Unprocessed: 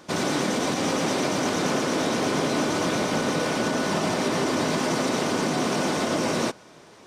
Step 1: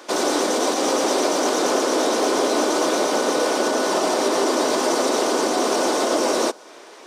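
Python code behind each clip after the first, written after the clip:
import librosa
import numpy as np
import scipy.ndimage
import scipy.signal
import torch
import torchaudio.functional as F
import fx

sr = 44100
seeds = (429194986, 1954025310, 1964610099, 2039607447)

y = scipy.signal.sosfilt(scipy.signal.butter(4, 320.0, 'highpass', fs=sr, output='sos'), x)
y = fx.dynamic_eq(y, sr, hz=2200.0, q=1.0, threshold_db=-46.0, ratio=4.0, max_db=-8)
y = F.gain(torch.from_numpy(y), 7.5).numpy()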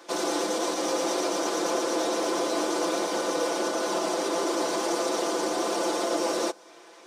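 y = x + 0.74 * np.pad(x, (int(5.9 * sr / 1000.0), 0))[:len(x)]
y = F.gain(torch.from_numpy(y), -9.0).numpy()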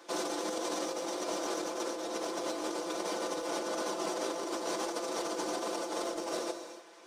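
y = np.clip(10.0 ** (19.0 / 20.0) * x, -1.0, 1.0) / 10.0 ** (19.0 / 20.0)
y = fx.rev_gated(y, sr, seeds[0], gate_ms=330, shape='flat', drr_db=10.5)
y = fx.over_compress(y, sr, threshold_db=-28.0, ratio=-0.5)
y = F.gain(torch.from_numpy(y), -7.0).numpy()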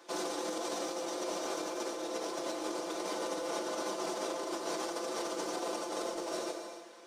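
y = fx.rev_plate(x, sr, seeds[1], rt60_s=1.6, hf_ratio=0.95, predelay_ms=0, drr_db=5.5)
y = F.gain(torch.from_numpy(y), -2.5).numpy()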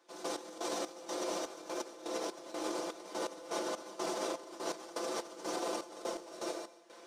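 y = fx.step_gate(x, sr, bpm=124, pattern='..x..xx..xxx', floor_db=-12.0, edge_ms=4.5)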